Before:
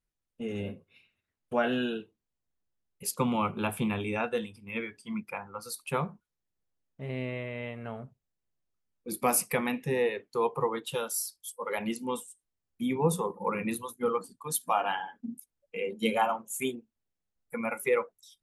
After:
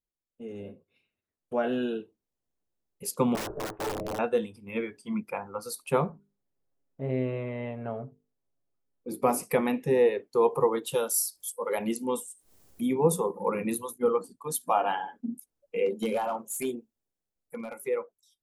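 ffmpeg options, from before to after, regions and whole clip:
-filter_complex "[0:a]asettb=1/sr,asplit=3[a][b][c];[a]atrim=end=3.354[d];[b]atrim=start=3.35:end=4.19,asetpts=PTS-STARTPTS,afade=t=in:d=0.004:c=qsin,afade=t=out:st=0.836:d=0.004:c=qsin,lowpass=f=1.3k:w=0.5412,lowpass=f=1.3k:w=1.3066,aeval=exprs='val(0)*sin(2*PI*220*n/s)':c=same,aeval=exprs='(mod(25.1*val(0)+1,2)-1)/25.1':c=same[e];[c]atrim=start=4.186[f];[d][e]acrossfade=d=0.004:c1=hsin:c2=qsin[g];[g][f]acrossfade=d=0.004:c1=qsin:c2=hsin,asettb=1/sr,asplit=3[h][i][j];[h]atrim=end=6.094[k];[i]atrim=start=6.09:end=9.43,asetpts=PTS-STARTPTS,afade=t=in:d=0.004:c=qsin,afade=t=out:st=3.336:d=0.004:c=qsin,highshelf=f=2.3k:g=-8.5,bandreject=f=50:t=h:w=6,bandreject=f=100:t=h:w=6,bandreject=f=150:t=h:w=6,bandreject=f=200:t=h:w=6,bandreject=f=250:t=h:w=6,bandreject=f=300:t=h:w=6,bandreject=f=350:t=h:w=6,bandreject=f=400:t=h:w=6,bandreject=f=450:t=h:w=6,aecho=1:1:7.3:0.42,atrim=end_sample=147294[l];[j]atrim=start=9.426[m];[k][l]acrossfade=d=0.004:c1=hsin:c2=qsin[n];[n][m]acrossfade=d=0.004:c1=qsin:c2=hsin,asettb=1/sr,asplit=3[o][p][q];[o]atrim=end=10.484[r];[p]atrim=start=10.48:end=13.98,asetpts=PTS-STARTPTS,afade=t=in:d=0.004:c=qsin,afade=t=out:st=3.496:d=0.004:c=qsin,highshelf=f=5.3k:g=7.5,acompressor=mode=upward:threshold=-35dB:ratio=2.5:attack=3.2:release=140:knee=2.83:detection=peak[s];[q]atrim=start=13.976[t];[r][s]acrossfade=d=0.004:c1=hsin:c2=qsin[u];[u][t]acrossfade=d=0.004:c1=qsin:c2=hsin,asettb=1/sr,asplit=3[v][w][x];[v]atrim=end=15.864[y];[w]atrim=start=15.86:end=17.87,asetpts=PTS-STARTPTS,afade=t=in:d=0.004:c=qsin,afade=t=out:st=2.006:d=0.004:c=qsin,highshelf=f=4.6k:g=4.5,acompressor=threshold=-28dB:ratio=12:attack=3.2:release=140:knee=1:detection=peak,volume=28dB,asoftclip=hard,volume=-28dB[z];[x]atrim=start=17.866[aa];[y][z]acrossfade=d=0.004:c1=hsin:c2=qsin[ab];[ab][aa]acrossfade=d=0.004:c1=qsin:c2=hsin,tiltshelf=f=800:g=8.5,dynaudnorm=f=200:g=17:m=12.5dB,bass=f=250:g=-12,treble=f=4k:g=5,volume=-6.5dB"

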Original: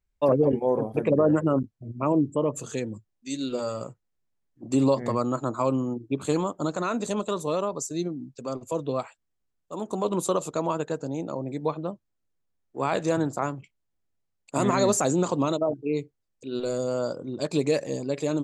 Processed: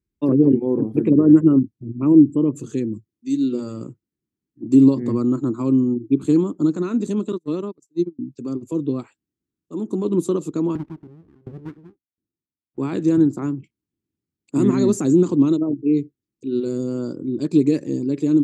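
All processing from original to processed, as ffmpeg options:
-filter_complex "[0:a]asettb=1/sr,asplit=3[a][b][c];[a]atrim=end=7.324[d];[b]atrim=start=7.32:end=8.19,asetpts=PTS-STARTPTS,afade=t=in:d=0.004:c=qsin,afade=t=out:st=0.866:d=0.004:c=qsin,highpass=f=120:p=1,agate=range=-39dB:threshold=-29dB:ratio=16:release=100:detection=peak[e];[c]atrim=start=8.186[f];[d][e]acrossfade=d=0.004:c1=hsin:c2=qsin[g];[g][f]acrossfade=d=0.004:c1=qsin:c2=hsin,asettb=1/sr,asplit=3[h][i][j];[h]atrim=end=10.754[k];[i]atrim=start=10.75:end=12.78,asetpts=PTS-STARTPTS,afade=t=in:d=0.004:c=qsin,afade=t=out:st=2.026:d=0.004:c=qsin,lowpass=f=1.3k:w=0.5412,lowpass=f=1.3k:w=1.3066,aeval=exprs='abs(val(0))':c=same,aeval=exprs='val(0)*pow(10,-28*if(lt(mod(1.4*n/s,1),2*abs(1.4)/1000),1-mod(1.4*n/s,1)/(2*abs(1.4)/1000),(mod(1.4*n/s,1)-2*abs(1.4)/1000)/(1-2*abs(1.4)/1000))/20)':c=same[l];[j]atrim=start=12.776[m];[k][l]acrossfade=d=0.004:c1=hsin:c2=qsin[n];[n][m]acrossfade=d=0.004:c1=qsin:c2=hsin,highpass=86,lowshelf=f=450:t=q:w=3:g=11,volume=-5.5dB"

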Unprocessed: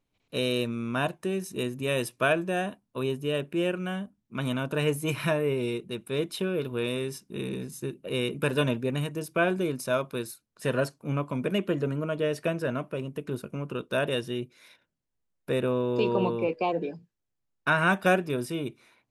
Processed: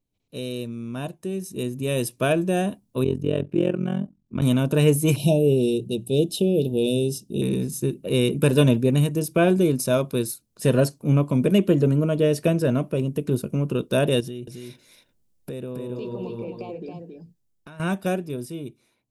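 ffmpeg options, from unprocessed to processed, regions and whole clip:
-filter_complex "[0:a]asettb=1/sr,asplit=3[a][b][c];[a]atrim=end=3.044[d];[b]atrim=start=3.04:end=4.42,asetpts=PTS-STARTPTS,afade=t=in:d=0.004:c=qsin,afade=t=out:st=1.376:d=0.004:c=qsin,aemphasis=mode=reproduction:type=75fm,tremolo=f=44:d=0.919[e];[c]atrim=start=4.416[f];[d][e]acrossfade=d=0.004:c1=hsin:c2=qsin[g];[g][f]acrossfade=d=0.004:c1=qsin:c2=hsin,asettb=1/sr,asplit=3[h][i][j];[h]atrim=end=5.164[k];[i]atrim=start=5.16:end=7.42,asetpts=PTS-STARTPTS,afade=t=in:d=0.004:c=qsin,afade=t=out:st=2.256:d=0.004:c=qsin,asuperstop=centerf=1500:order=12:qfactor=0.82,highshelf=f=9.2k:g=-3.5,bandreject=f=60:t=h:w=6,bandreject=f=120:t=h:w=6,bandreject=f=180:t=h:w=6[l];[j]atrim=start=7.416[m];[k][l]acrossfade=d=0.004:c1=hsin:c2=qsin[n];[n][m]acrossfade=d=0.004:c1=qsin:c2=hsin,asettb=1/sr,asplit=3[o][p][q];[o]atrim=end=14.204[r];[p]atrim=start=14.2:end=17.8,asetpts=PTS-STARTPTS,afade=t=in:d=0.004:c=qsin,afade=t=out:st=3.596:d=0.004:c=qsin,acompressor=threshold=-41dB:ratio=4:attack=3.2:release=140:knee=1:detection=peak,aecho=1:1:273:0.596,atrim=end_sample=158760[s];[q]atrim=start=17.796[t];[r][s]acrossfade=d=0.004:c1=hsin:c2=qsin[u];[u][t]acrossfade=d=0.004:c1=qsin:c2=hsin,equalizer=f=1.5k:t=o:w=2.5:g=-13,dynaudnorm=f=190:g=21:m=12dB"

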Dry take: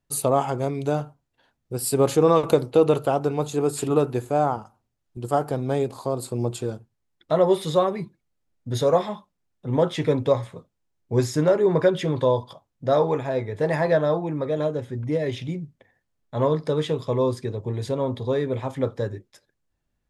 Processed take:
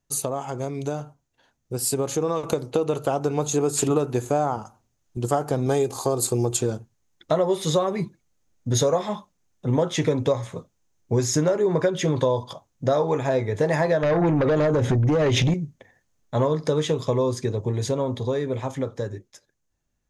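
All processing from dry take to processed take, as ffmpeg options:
-filter_complex "[0:a]asettb=1/sr,asplit=3[a][b][c];[a]atrim=end=5.664[d];[b]atrim=start=5.66:end=6.57,asetpts=PTS-STARTPTS,afade=t=in:d=0.004:c=qsin,afade=t=out:st=0.906:d=0.004:c=qsin,highshelf=f=8.4k:g=10.5,aecho=1:1:2.5:0.39,atrim=end_sample=40131[e];[c]atrim=start=6.566[f];[d][e]acrossfade=d=0.004:c1=hsin:c2=qsin[g];[g][f]acrossfade=d=0.004:c1=qsin:c2=hsin,asettb=1/sr,asplit=3[h][i][j];[h]atrim=end=14.034[k];[i]atrim=start=14.03:end=15.54,asetpts=PTS-STARTPTS,afade=t=in:d=0.004:c=qsin,afade=t=out:st=1.506:d=0.004:c=qsin,lowpass=f=3.4k:p=1,acompressor=threshold=-32dB:ratio=8:attack=3.2:release=140:knee=1:detection=peak,aeval=exprs='0.126*sin(PI/2*4.47*val(0)/0.126)':c=same[l];[j]atrim=start=15.536[m];[k][l]acrossfade=d=0.004:c1=hsin:c2=qsin[n];[n][m]acrossfade=d=0.004:c1=qsin:c2=hsin,acompressor=threshold=-24dB:ratio=6,equalizer=f=6.4k:w=3.5:g=11,dynaudnorm=f=290:g=17:m=6dB"

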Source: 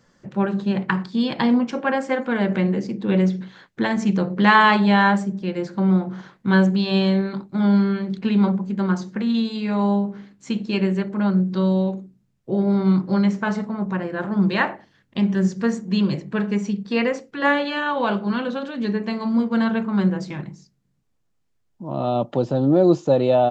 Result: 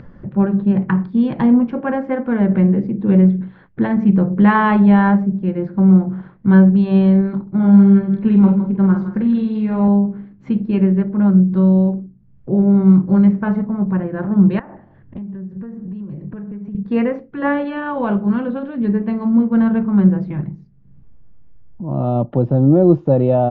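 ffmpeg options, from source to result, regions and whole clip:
-filter_complex "[0:a]asettb=1/sr,asplit=3[a][b][c];[a]atrim=end=7.424[d];[b]atrim=start=7.42:end=9.88,asetpts=PTS-STARTPTS,afade=t=in:d=0.004:c=qsin,afade=t=out:st=2.456:d=0.004:c=qsin,asplit=2[e][f];[f]adelay=46,volume=-6dB[g];[e][g]amix=inputs=2:normalize=0,atrim=end_sample=108486,aecho=1:1:162:0.266,atrim=end_sample=108486[h];[c]atrim=start=9.876[i];[d][h]acrossfade=d=0.004:c1=hsin:c2=qsin[j];[j][i]acrossfade=d=0.004:c1=qsin:c2=hsin,asettb=1/sr,asplit=3[k][l][m];[k]atrim=end=14.594[n];[l]atrim=start=14.59:end=16.75,asetpts=PTS-STARTPTS,afade=t=in:d=0.004:c=qsin,afade=t=out:st=2.156:d=0.004:c=qsin,equalizer=f=4.5k:t=o:w=2:g=-8,acompressor=threshold=-33dB:ratio=16:attack=3.2:release=140:knee=1:detection=peak,aecho=1:1:178:0.112,atrim=end_sample=95256[o];[m]atrim=start=16.746[p];[n][o]acrossfade=d=0.004:c1=hsin:c2=qsin[q];[q][p]acrossfade=d=0.004:c1=qsin:c2=hsin,lowpass=2.3k,aemphasis=mode=reproduction:type=riaa,acompressor=mode=upward:threshold=-27dB:ratio=2.5,volume=-1dB"

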